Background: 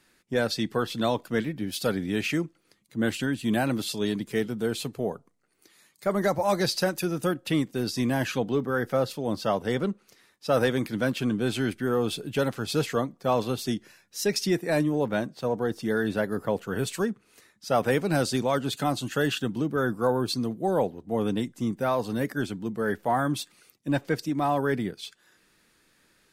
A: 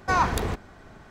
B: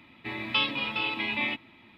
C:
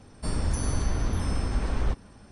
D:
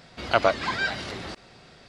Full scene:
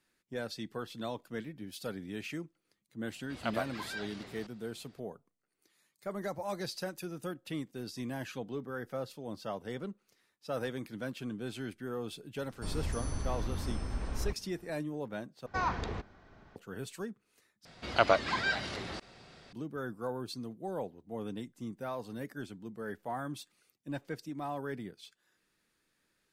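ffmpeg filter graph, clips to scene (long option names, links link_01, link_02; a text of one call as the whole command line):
ffmpeg -i bed.wav -i cue0.wav -i cue1.wav -i cue2.wav -i cue3.wav -filter_complex "[4:a]asplit=2[link_01][link_02];[0:a]volume=-13dB[link_03];[1:a]lowpass=frequency=5800:width=0.5412,lowpass=frequency=5800:width=1.3066[link_04];[link_03]asplit=3[link_05][link_06][link_07];[link_05]atrim=end=15.464[link_08];[link_04]atrim=end=1.1,asetpts=PTS-STARTPTS,volume=-10dB[link_09];[link_06]atrim=start=16.556:end=17.654[link_10];[link_02]atrim=end=1.88,asetpts=PTS-STARTPTS,volume=-4.5dB[link_11];[link_07]atrim=start=19.526[link_12];[link_01]atrim=end=1.88,asetpts=PTS-STARTPTS,volume=-15dB,afade=type=in:duration=0.004:curve=hsin,afade=type=out:start_time=1.876:duration=0.004:curve=hsin,adelay=3120[link_13];[3:a]atrim=end=2.31,asetpts=PTS-STARTPTS,volume=-9dB,afade=type=in:duration=0.004:curve=hsin,afade=type=out:start_time=2.306:duration=0.004:curve=hsin,adelay=12390[link_14];[link_08][link_09]acrossfade=duration=0.004:curve1=hsin:curve2=hsin[link_15];[link_15][link_10]acrossfade=duration=0.004:curve1=hsin:curve2=hsin[link_16];[link_16][link_11]acrossfade=duration=0.004:curve1=hsin:curve2=hsin[link_17];[link_17][link_12]acrossfade=duration=0.004:curve1=hsin:curve2=hsin[link_18];[link_18][link_13][link_14]amix=inputs=3:normalize=0" out.wav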